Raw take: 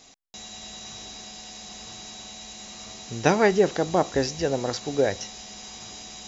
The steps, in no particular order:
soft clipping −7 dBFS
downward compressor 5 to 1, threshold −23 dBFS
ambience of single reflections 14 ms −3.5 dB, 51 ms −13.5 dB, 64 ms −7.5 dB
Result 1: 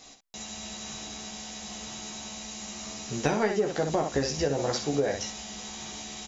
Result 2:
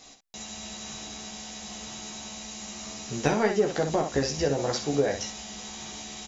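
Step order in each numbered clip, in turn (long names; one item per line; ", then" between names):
soft clipping, then ambience of single reflections, then downward compressor
soft clipping, then downward compressor, then ambience of single reflections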